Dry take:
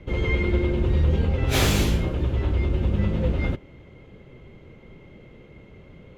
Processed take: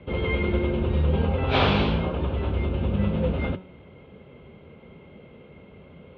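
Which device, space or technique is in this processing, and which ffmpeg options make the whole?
guitar cabinet: -filter_complex "[0:a]lowpass=frequency=5000:width=0.5412,lowpass=frequency=5000:width=1.3066,highpass=88,equalizer=frequency=120:width_type=q:width=4:gain=-9,equalizer=frequency=320:width_type=q:width=4:gain=-7,equalizer=frequency=1900:width_type=q:width=4:gain=-8,lowpass=frequency=3500:width=0.5412,lowpass=frequency=3500:width=1.3066,bandreject=frequency=185.9:width_type=h:width=4,bandreject=frequency=371.8:width_type=h:width=4,bandreject=frequency=557.7:width_type=h:width=4,bandreject=frequency=743.6:width_type=h:width=4,bandreject=frequency=929.5:width_type=h:width=4,bandreject=frequency=1115.4:width_type=h:width=4,bandreject=frequency=1301.3:width_type=h:width=4,bandreject=frequency=1487.2:width_type=h:width=4,bandreject=frequency=1673.1:width_type=h:width=4,bandreject=frequency=1859:width_type=h:width=4,bandreject=frequency=2044.9:width_type=h:width=4,bandreject=frequency=2230.8:width_type=h:width=4,bandreject=frequency=2416.7:width_type=h:width=4,bandreject=frequency=2602.6:width_type=h:width=4,bandreject=frequency=2788.5:width_type=h:width=4,bandreject=frequency=2974.4:width_type=h:width=4,bandreject=frequency=3160.3:width_type=h:width=4,bandreject=frequency=3346.2:width_type=h:width=4,bandreject=frequency=3532.1:width_type=h:width=4,bandreject=frequency=3718:width_type=h:width=4,bandreject=frequency=3903.9:width_type=h:width=4,bandreject=frequency=4089.8:width_type=h:width=4,bandreject=frequency=4275.7:width_type=h:width=4,bandreject=frequency=4461.6:width_type=h:width=4,bandreject=frequency=4647.5:width_type=h:width=4,bandreject=frequency=4833.4:width_type=h:width=4,bandreject=frequency=5019.3:width_type=h:width=4,bandreject=frequency=5205.2:width_type=h:width=4,bandreject=frequency=5391.1:width_type=h:width=4,asettb=1/sr,asplit=3[link_01][link_02][link_03];[link_01]atrim=end=1.134[link_04];[link_02]atrim=start=1.13:end=2.34,asetpts=PTS-STARTPTS,afade=type=in:duration=0.004:curve=qsin,afade=type=out:start_time=1.206:duration=0.004:curve=qsin,equalizer=frequency=940:width_type=o:width=1:gain=4.5[link_05];[link_03]atrim=start=2.336[link_06];[link_04][link_05]acrossfade=duration=0.004:curve1=hsin:curve2=qsin[link_07];[link_07][link_06]acrossfade=duration=0.004:curve1=qsin:curve2=hsin,volume=3dB"

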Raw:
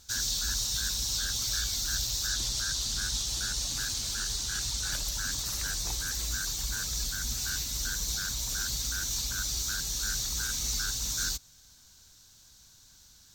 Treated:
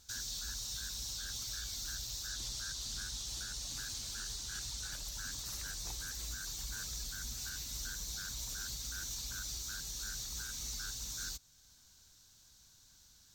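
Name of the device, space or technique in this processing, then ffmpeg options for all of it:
soft clipper into limiter: -af "asoftclip=type=tanh:threshold=-20dB,alimiter=level_in=2.5dB:limit=-24dB:level=0:latency=1:release=413,volume=-2.5dB,volume=-6dB"

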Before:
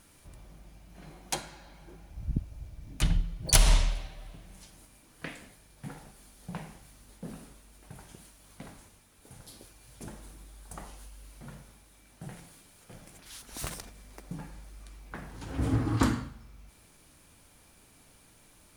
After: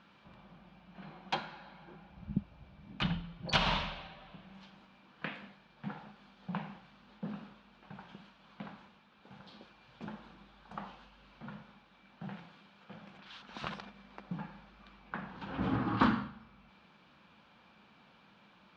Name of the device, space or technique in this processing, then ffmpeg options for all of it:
overdrive pedal into a guitar cabinet: -filter_complex "[0:a]asplit=2[link_01][link_02];[link_02]highpass=frequency=720:poles=1,volume=11dB,asoftclip=type=tanh:threshold=-5.5dB[link_03];[link_01][link_03]amix=inputs=2:normalize=0,lowpass=frequency=2200:poles=1,volume=-6dB,highpass=92,equalizer=frequency=98:width_type=q:width=4:gain=-10,equalizer=frequency=200:width_type=q:width=4:gain=10,equalizer=frequency=290:width_type=q:width=4:gain=-6,equalizer=frequency=420:width_type=q:width=4:gain=-6,equalizer=frequency=640:width_type=q:width=4:gain=-5,equalizer=frequency=2000:width_type=q:width=4:gain=-7,lowpass=frequency=3800:width=0.5412,lowpass=frequency=3800:width=1.3066"

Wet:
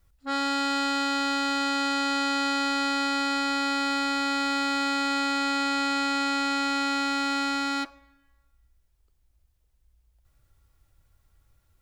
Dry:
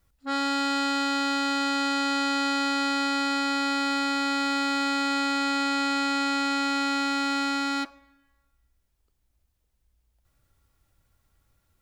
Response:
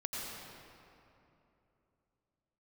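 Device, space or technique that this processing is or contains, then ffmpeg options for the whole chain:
low shelf boost with a cut just above: -af "lowshelf=frequency=100:gain=7,equalizer=frequency=220:width_type=o:width=0.55:gain=-5.5"

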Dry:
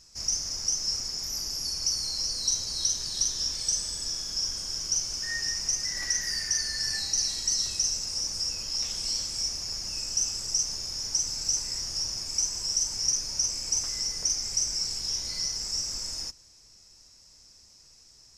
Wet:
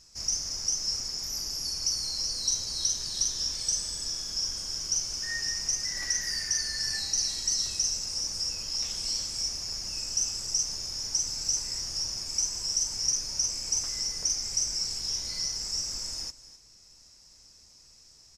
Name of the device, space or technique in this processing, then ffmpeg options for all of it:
ducked delay: -filter_complex "[0:a]asplit=3[link_01][link_02][link_03];[link_02]adelay=256,volume=-7dB[link_04];[link_03]apad=whole_len=821665[link_05];[link_04][link_05]sidechaincompress=threshold=-48dB:ratio=3:attack=16:release=642[link_06];[link_01][link_06]amix=inputs=2:normalize=0,volume=-1dB"

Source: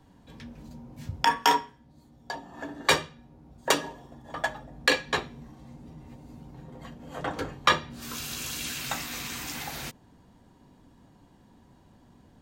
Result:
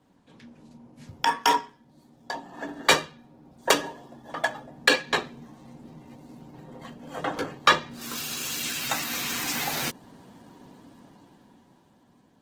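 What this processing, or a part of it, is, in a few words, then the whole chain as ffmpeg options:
video call: -af "highpass=170,dynaudnorm=framelen=240:gausssize=13:maxgain=13.5dB,volume=-2.5dB" -ar 48000 -c:a libopus -b:a 16k

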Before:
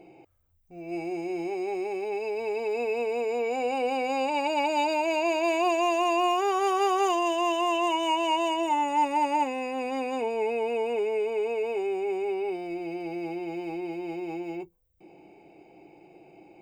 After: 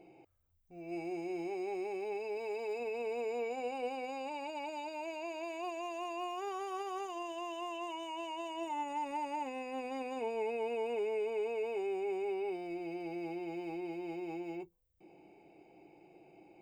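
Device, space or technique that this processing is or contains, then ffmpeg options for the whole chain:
de-esser from a sidechain: -filter_complex "[0:a]asplit=2[link_01][link_02];[link_02]highpass=5400,apad=whole_len=732513[link_03];[link_01][link_03]sidechaincompress=threshold=-52dB:ratio=5:attack=2.8:release=65,asettb=1/sr,asplit=3[link_04][link_05][link_06];[link_04]atrim=end=2.374[link_07];[link_05]atrim=start=2.37:end=2.8,asetpts=PTS-STARTPTS,afade=type=in:duration=0.004:curve=qsin,afade=type=out:start_time=0.426:duration=0.004:curve=qsin,bass=frequency=250:gain=-6,treble=frequency=4000:gain=2[link_08];[link_06]atrim=start=2.796[link_09];[link_07][link_08]acrossfade=duration=0.004:curve1=hsin:curve2=qsin[link_10];[link_10][link_09]acrossfade=duration=0.004:curve1=qsin:curve2=hsin,volume=-7dB"

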